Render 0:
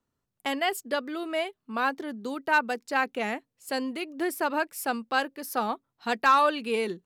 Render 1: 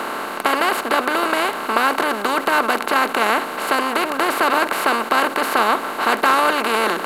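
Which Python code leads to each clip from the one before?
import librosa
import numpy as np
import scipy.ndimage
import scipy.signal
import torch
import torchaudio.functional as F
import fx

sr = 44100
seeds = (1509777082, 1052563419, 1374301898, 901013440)

y = fx.bin_compress(x, sr, power=0.2)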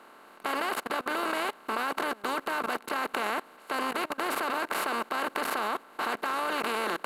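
y = fx.level_steps(x, sr, step_db=23)
y = y * librosa.db_to_amplitude(-7.0)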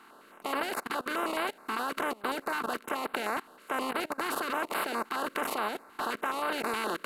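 y = fx.filter_held_notch(x, sr, hz=9.5, low_hz=570.0, high_hz=6200.0)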